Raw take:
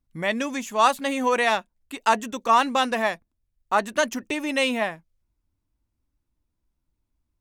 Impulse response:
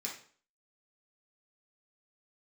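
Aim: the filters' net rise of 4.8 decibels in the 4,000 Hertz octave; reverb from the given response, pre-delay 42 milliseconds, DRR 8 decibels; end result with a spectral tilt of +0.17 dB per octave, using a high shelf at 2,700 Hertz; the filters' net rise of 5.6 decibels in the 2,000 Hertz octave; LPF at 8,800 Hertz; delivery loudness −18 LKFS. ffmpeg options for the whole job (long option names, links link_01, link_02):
-filter_complex "[0:a]lowpass=8800,equalizer=frequency=2000:width_type=o:gain=7.5,highshelf=frequency=2700:gain=-6,equalizer=frequency=4000:width_type=o:gain=8,asplit=2[link_01][link_02];[1:a]atrim=start_sample=2205,adelay=42[link_03];[link_02][link_03]afir=irnorm=-1:irlink=0,volume=-8.5dB[link_04];[link_01][link_04]amix=inputs=2:normalize=0,volume=2.5dB"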